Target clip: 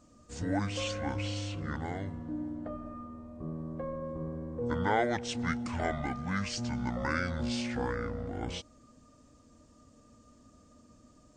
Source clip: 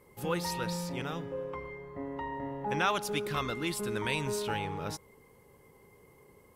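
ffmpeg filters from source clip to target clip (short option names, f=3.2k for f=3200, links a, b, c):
-af "asetrate=25442,aresample=44100"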